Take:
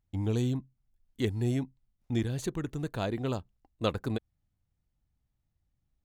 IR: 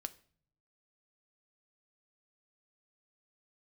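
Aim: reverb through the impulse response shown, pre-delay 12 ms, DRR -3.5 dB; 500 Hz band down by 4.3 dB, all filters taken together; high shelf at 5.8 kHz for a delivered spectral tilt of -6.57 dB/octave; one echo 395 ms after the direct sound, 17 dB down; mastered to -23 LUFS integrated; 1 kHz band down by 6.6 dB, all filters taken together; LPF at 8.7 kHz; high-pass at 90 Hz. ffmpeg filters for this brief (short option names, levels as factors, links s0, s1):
-filter_complex "[0:a]highpass=90,lowpass=8700,equalizer=f=500:t=o:g=-4,equalizer=f=1000:t=o:g=-8,highshelf=f=5800:g=-4,aecho=1:1:395:0.141,asplit=2[s0][s1];[1:a]atrim=start_sample=2205,adelay=12[s2];[s1][s2]afir=irnorm=-1:irlink=0,volume=2[s3];[s0][s3]amix=inputs=2:normalize=0,volume=2.51"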